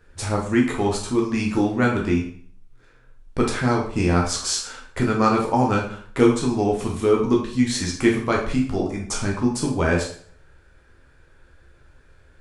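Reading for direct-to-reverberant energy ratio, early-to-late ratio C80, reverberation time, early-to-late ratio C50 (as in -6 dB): -1.5 dB, 10.0 dB, 0.50 s, 5.5 dB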